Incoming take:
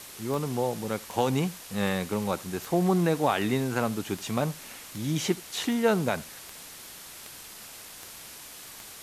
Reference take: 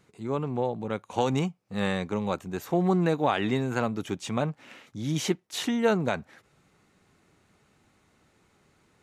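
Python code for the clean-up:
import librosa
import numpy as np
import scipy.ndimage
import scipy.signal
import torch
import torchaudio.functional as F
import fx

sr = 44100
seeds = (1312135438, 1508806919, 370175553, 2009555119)

y = fx.fix_declick_ar(x, sr, threshold=10.0)
y = fx.noise_reduce(y, sr, print_start_s=7.48, print_end_s=7.98, reduce_db=20.0)
y = fx.fix_echo_inverse(y, sr, delay_ms=79, level_db=-22.0)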